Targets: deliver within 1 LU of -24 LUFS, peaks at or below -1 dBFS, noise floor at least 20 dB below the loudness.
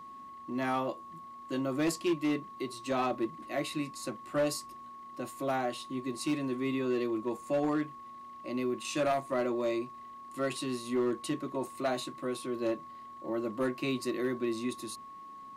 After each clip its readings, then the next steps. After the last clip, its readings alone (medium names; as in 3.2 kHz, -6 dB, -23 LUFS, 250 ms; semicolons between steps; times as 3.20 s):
clipped samples 0.8%; clipping level -24.0 dBFS; steady tone 1.1 kHz; tone level -45 dBFS; loudness -34.0 LUFS; peak level -24.0 dBFS; loudness target -24.0 LUFS
-> clip repair -24 dBFS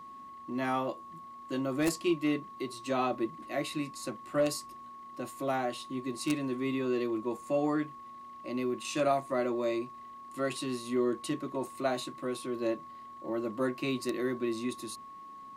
clipped samples 0.0%; steady tone 1.1 kHz; tone level -45 dBFS
-> band-stop 1.1 kHz, Q 30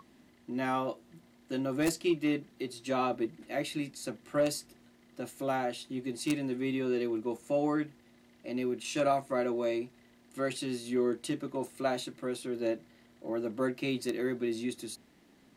steady tone not found; loudness -33.5 LUFS; peak level -15.0 dBFS; loudness target -24.0 LUFS
-> trim +9.5 dB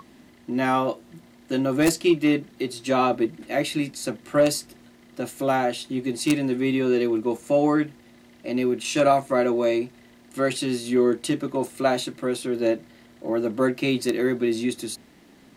loudness -24.0 LUFS; peak level -5.5 dBFS; noise floor -53 dBFS